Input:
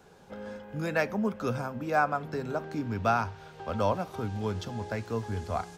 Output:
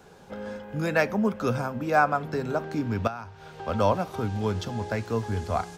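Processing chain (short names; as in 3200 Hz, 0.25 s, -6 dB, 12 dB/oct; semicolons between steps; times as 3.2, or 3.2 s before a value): 3.07–3.63 compressor 6:1, threshold -38 dBFS, peak gain reduction 16 dB; gain +4.5 dB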